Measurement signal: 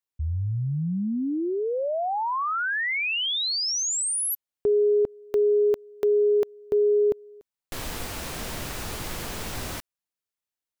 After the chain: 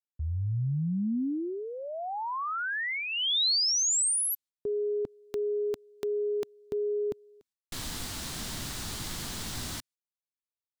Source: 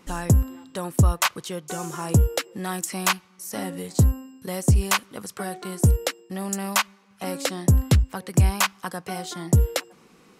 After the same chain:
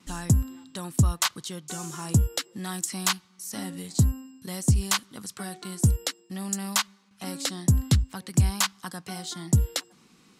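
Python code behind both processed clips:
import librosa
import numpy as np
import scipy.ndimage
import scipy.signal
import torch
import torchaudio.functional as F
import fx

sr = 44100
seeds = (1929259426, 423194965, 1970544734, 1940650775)

y = fx.graphic_eq(x, sr, hz=(125, 250, 500, 4000, 8000), db=(3, 4, -7, 6, 5))
y = fx.gate_hold(y, sr, open_db=-46.0, close_db=-49.0, hold_ms=109.0, range_db=-15, attack_ms=1.7, release_ms=31.0)
y = fx.dynamic_eq(y, sr, hz=2500.0, q=4.3, threshold_db=-45.0, ratio=4.0, max_db=-5)
y = F.gain(torch.from_numpy(y), -5.5).numpy()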